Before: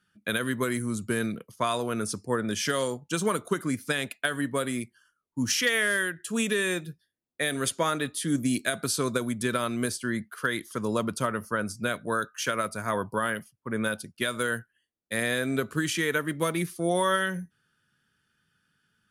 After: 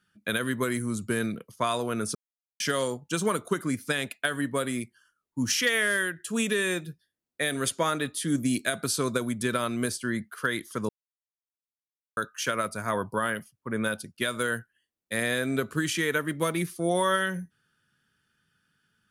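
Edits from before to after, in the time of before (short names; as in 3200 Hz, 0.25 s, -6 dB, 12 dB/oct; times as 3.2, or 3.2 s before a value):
2.15–2.6 mute
10.89–12.17 mute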